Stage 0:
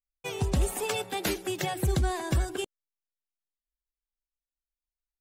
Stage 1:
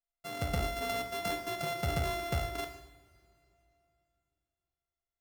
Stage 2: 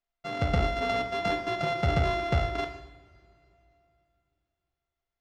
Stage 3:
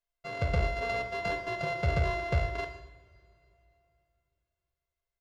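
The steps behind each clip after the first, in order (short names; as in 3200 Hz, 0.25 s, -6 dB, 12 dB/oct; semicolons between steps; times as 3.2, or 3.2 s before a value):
sample sorter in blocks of 64 samples; two-slope reverb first 0.72 s, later 3.2 s, from -21 dB, DRR 3.5 dB; gain -7.5 dB
air absorption 160 m; gain +7.5 dB
comb 1.9 ms, depth 63%; gain -4.5 dB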